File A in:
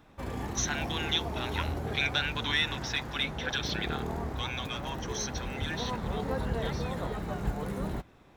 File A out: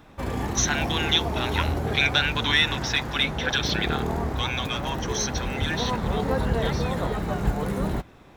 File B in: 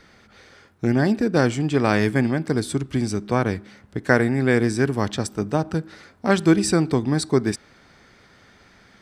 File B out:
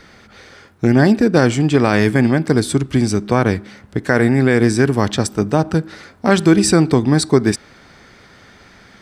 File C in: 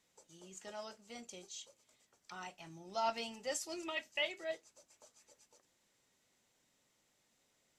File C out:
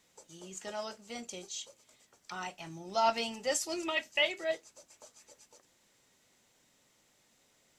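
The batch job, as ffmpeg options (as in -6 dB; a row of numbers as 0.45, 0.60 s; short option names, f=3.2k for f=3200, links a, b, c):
-af "alimiter=level_in=8.5dB:limit=-1dB:release=50:level=0:latency=1,volume=-1dB"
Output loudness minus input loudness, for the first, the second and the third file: +7.5, +6.0, +7.5 LU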